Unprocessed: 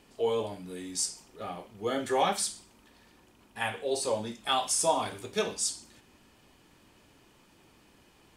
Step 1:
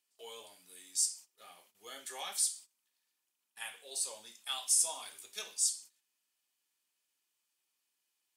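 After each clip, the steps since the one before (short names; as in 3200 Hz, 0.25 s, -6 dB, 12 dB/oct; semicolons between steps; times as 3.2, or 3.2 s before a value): gate -49 dBFS, range -14 dB; differentiator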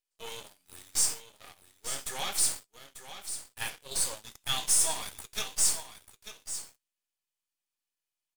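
half-wave gain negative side -12 dB; sample leveller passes 3; echo 0.892 s -11 dB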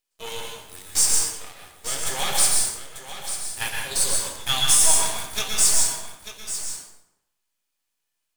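plate-style reverb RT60 0.83 s, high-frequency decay 0.7×, pre-delay 0.105 s, DRR 0 dB; gain +7 dB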